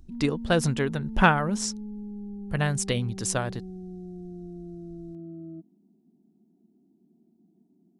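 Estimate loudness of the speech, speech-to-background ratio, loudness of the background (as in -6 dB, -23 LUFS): -26.5 LUFS, 12.5 dB, -39.0 LUFS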